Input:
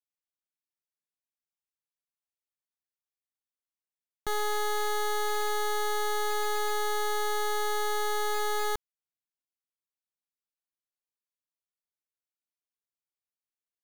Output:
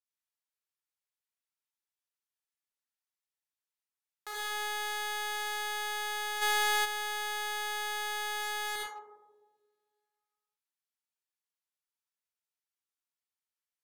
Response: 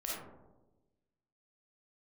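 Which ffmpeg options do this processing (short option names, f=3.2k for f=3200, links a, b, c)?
-filter_complex "[0:a]highpass=930[a];[1:a]atrim=start_sample=2205,asetrate=30870,aresample=44100[b];[a][b]afir=irnorm=-1:irlink=0,aeval=exprs='clip(val(0),-1,0.0168)':c=same,asplit=3[c][d][e];[c]afade=t=out:st=6.41:d=0.02[f];[d]acontrast=89,afade=t=in:st=6.41:d=0.02,afade=t=out:st=6.84:d=0.02[g];[e]afade=t=in:st=6.84:d=0.02[h];[f][g][h]amix=inputs=3:normalize=0,volume=-2.5dB"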